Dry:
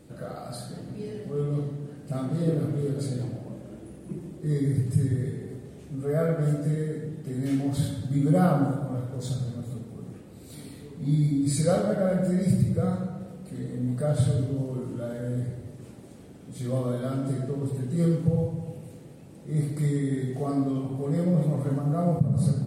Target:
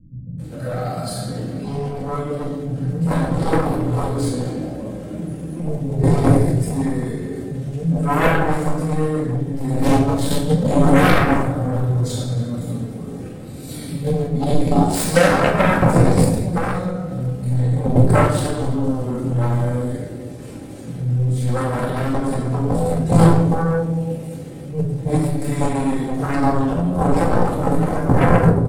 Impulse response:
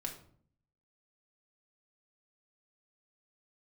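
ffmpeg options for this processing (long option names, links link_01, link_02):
-filter_complex "[0:a]acrossover=split=180[link_01][link_02];[link_02]adelay=320[link_03];[link_01][link_03]amix=inputs=2:normalize=0,acontrast=54,aeval=exprs='0.473*(cos(1*acos(clip(val(0)/0.473,-1,1)))-cos(1*PI/2))+0.00841*(cos(5*acos(clip(val(0)/0.473,-1,1)))-cos(5*PI/2))+0.168*(cos(7*acos(clip(val(0)/0.473,-1,1)))-cos(7*PI/2))':channel_layout=same,atempo=0.79[link_04];[1:a]atrim=start_sample=2205[link_05];[link_04][link_05]afir=irnorm=-1:irlink=0,alimiter=level_in=5.5dB:limit=-1dB:release=50:level=0:latency=1,volume=-1dB"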